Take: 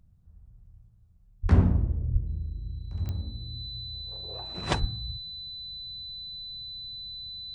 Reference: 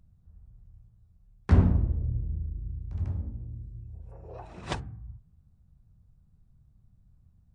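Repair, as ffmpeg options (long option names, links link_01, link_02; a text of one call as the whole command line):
ffmpeg -i in.wav -filter_complex "[0:a]adeclick=threshold=4,bandreject=frequency=4000:width=30,asplit=3[link_01][link_02][link_03];[link_01]afade=type=out:start_time=1.42:duration=0.02[link_04];[link_02]highpass=frequency=140:width=0.5412,highpass=frequency=140:width=1.3066,afade=type=in:start_time=1.42:duration=0.02,afade=type=out:start_time=1.54:duration=0.02[link_05];[link_03]afade=type=in:start_time=1.54:duration=0.02[link_06];[link_04][link_05][link_06]amix=inputs=3:normalize=0,asplit=3[link_07][link_08][link_09];[link_07]afade=type=out:start_time=2.12:duration=0.02[link_10];[link_08]highpass=frequency=140:width=0.5412,highpass=frequency=140:width=1.3066,afade=type=in:start_time=2.12:duration=0.02,afade=type=out:start_time=2.24:duration=0.02[link_11];[link_09]afade=type=in:start_time=2.24:duration=0.02[link_12];[link_10][link_11][link_12]amix=inputs=3:normalize=0,asplit=3[link_13][link_14][link_15];[link_13]afade=type=out:start_time=4.8:duration=0.02[link_16];[link_14]highpass=frequency=140:width=0.5412,highpass=frequency=140:width=1.3066,afade=type=in:start_time=4.8:duration=0.02,afade=type=out:start_time=4.92:duration=0.02[link_17];[link_15]afade=type=in:start_time=4.92:duration=0.02[link_18];[link_16][link_17][link_18]amix=inputs=3:normalize=0,asetnsamples=nb_out_samples=441:pad=0,asendcmd='4.55 volume volume -5.5dB',volume=0dB" out.wav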